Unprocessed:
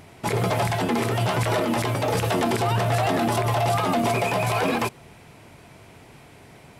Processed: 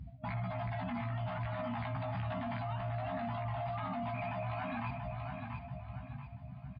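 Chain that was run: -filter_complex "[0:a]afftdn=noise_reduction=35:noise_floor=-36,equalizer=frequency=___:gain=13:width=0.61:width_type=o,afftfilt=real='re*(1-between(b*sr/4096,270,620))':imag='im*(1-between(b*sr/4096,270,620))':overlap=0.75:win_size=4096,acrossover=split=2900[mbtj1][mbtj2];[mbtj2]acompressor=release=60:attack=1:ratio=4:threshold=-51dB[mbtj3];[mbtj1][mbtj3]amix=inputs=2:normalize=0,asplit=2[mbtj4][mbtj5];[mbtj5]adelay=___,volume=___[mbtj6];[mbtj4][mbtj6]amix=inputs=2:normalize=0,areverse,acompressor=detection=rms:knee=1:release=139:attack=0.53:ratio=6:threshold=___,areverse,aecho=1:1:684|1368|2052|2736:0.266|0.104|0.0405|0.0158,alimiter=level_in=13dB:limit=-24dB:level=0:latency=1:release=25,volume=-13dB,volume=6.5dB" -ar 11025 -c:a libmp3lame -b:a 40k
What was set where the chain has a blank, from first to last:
62, 16, -2.5dB, -35dB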